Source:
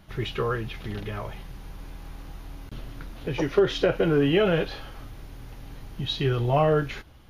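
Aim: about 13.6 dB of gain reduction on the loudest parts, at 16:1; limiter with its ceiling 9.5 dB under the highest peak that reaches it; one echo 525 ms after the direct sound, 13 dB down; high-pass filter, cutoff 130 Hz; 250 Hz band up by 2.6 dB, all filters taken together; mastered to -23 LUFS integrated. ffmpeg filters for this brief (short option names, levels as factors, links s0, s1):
-af "highpass=130,equalizer=f=250:t=o:g=4.5,acompressor=threshold=0.0447:ratio=16,alimiter=level_in=1.41:limit=0.0631:level=0:latency=1,volume=0.708,aecho=1:1:525:0.224,volume=5.62"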